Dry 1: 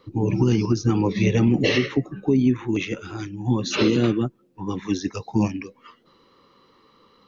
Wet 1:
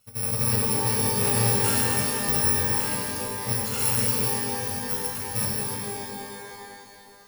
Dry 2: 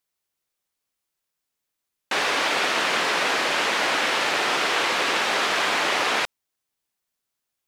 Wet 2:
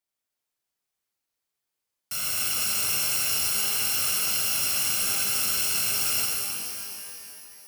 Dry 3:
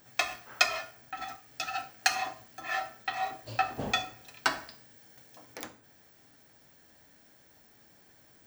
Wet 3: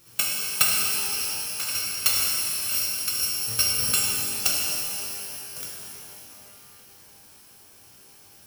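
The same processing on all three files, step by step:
samples in bit-reversed order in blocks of 128 samples
reverb with rising layers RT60 2.6 s, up +12 semitones, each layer −2 dB, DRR −2.5 dB
loudness normalisation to −23 LKFS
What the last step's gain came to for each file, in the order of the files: −9.0, −8.0, +3.0 decibels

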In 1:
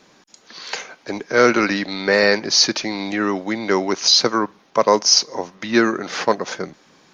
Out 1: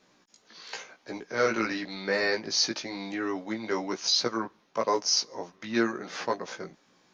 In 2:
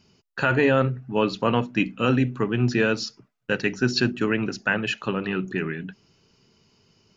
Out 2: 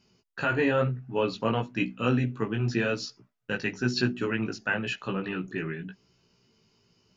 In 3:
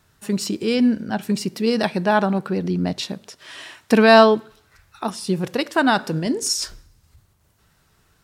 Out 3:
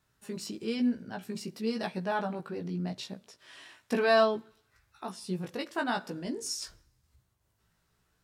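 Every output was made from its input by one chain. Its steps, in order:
chorus effect 0.98 Hz, delay 16 ms, depth 2.2 ms
normalise the peak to −12 dBFS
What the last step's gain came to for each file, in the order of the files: −8.0, −2.0, −10.0 decibels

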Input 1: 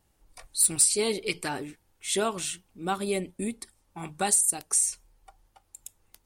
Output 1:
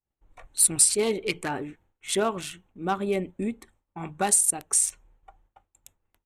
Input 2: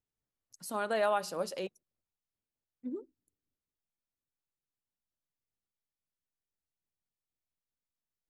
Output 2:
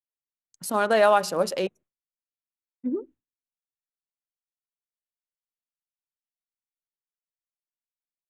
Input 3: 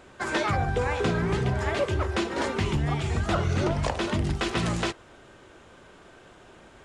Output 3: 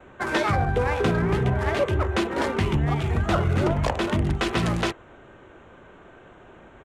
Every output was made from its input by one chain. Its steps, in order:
adaptive Wiener filter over 9 samples
downsampling to 32,000 Hz
downward expander −56 dBFS
loudness normalisation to −24 LKFS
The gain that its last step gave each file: +2.5, +11.0, +3.5 decibels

